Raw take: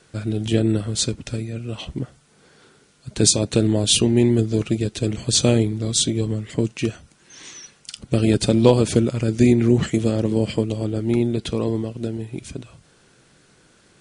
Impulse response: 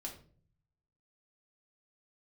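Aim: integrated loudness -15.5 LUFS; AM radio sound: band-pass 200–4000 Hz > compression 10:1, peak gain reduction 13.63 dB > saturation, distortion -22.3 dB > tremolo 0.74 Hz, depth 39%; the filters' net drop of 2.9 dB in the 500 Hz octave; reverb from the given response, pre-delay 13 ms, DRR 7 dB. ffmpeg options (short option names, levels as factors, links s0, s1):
-filter_complex "[0:a]equalizer=f=500:t=o:g=-3.5,asplit=2[s0][s1];[1:a]atrim=start_sample=2205,adelay=13[s2];[s1][s2]afir=irnorm=-1:irlink=0,volume=0.596[s3];[s0][s3]amix=inputs=2:normalize=0,highpass=200,lowpass=4000,acompressor=threshold=0.0708:ratio=10,asoftclip=threshold=0.15,tremolo=f=0.74:d=0.39,volume=6.31"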